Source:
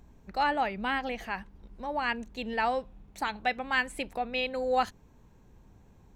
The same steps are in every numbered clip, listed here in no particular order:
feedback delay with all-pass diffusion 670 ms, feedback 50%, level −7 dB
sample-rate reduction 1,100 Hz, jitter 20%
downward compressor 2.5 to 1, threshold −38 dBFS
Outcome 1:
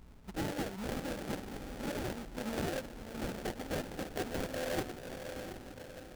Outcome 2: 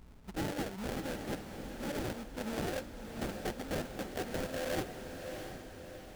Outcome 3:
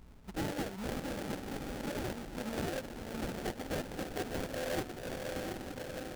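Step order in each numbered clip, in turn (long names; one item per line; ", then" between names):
downward compressor, then feedback delay with all-pass diffusion, then sample-rate reduction
sample-rate reduction, then downward compressor, then feedback delay with all-pass diffusion
feedback delay with all-pass diffusion, then sample-rate reduction, then downward compressor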